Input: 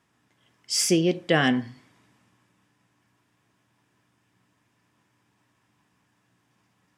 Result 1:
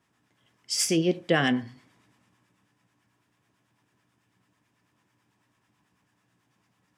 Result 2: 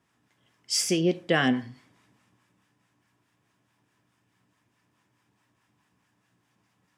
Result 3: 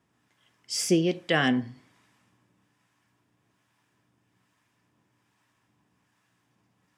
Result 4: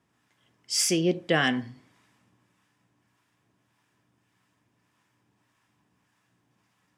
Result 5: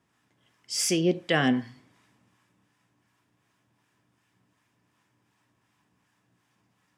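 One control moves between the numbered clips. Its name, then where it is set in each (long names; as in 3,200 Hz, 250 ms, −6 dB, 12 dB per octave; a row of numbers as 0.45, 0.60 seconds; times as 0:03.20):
two-band tremolo in antiphase, speed: 9.1, 4.7, 1.2, 1.7, 2.7 Hertz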